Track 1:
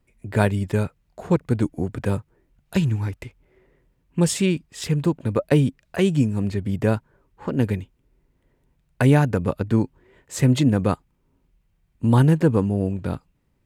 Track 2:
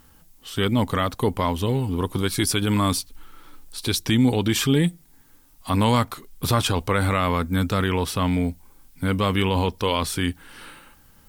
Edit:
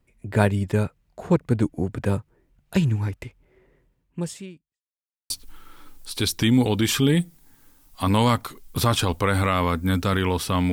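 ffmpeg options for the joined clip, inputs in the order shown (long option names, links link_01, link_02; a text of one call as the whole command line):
ffmpeg -i cue0.wav -i cue1.wav -filter_complex "[0:a]apad=whole_dur=10.72,atrim=end=10.72,asplit=2[link_01][link_02];[link_01]atrim=end=4.82,asetpts=PTS-STARTPTS,afade=type=out:start_time=3.78:duration=1.04:curve=qua[link_03];[link_02]atrim=start=4.82:end=5.3,asetpts=PTS-STARTPTS,volume=0[link_04];[1:a]atrim=start=2.97:end=8.39,asetpts=PTS-STARTPTS,afade=type=in:duration=0.004:curve=hsin[link_05];[link_03][link_04][link_05]concat=n=3:v=0:a=1" out.wav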